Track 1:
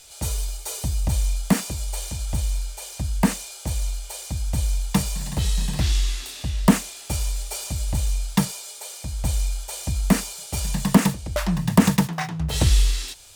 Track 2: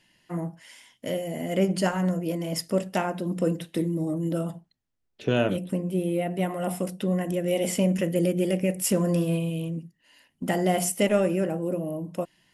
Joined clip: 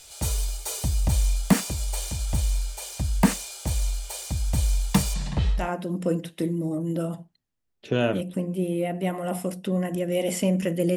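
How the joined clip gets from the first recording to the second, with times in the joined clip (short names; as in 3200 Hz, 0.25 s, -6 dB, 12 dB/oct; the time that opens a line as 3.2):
track 1
5.13–5.69 LPF 7400 Hz -> 1100 Hz
5.6 switch to track 2 from 2.96 s, crossfade 0.18 s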